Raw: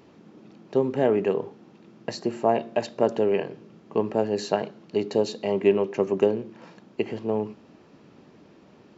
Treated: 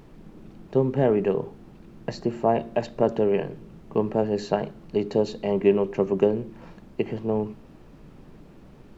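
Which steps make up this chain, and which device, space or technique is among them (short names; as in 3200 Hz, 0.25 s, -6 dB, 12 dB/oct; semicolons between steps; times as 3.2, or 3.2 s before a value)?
car interior (bell 140 Hz +8.5 dB 0.78 oct; high shelf 3900 Hz -8 dB; brown noise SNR 24 dB)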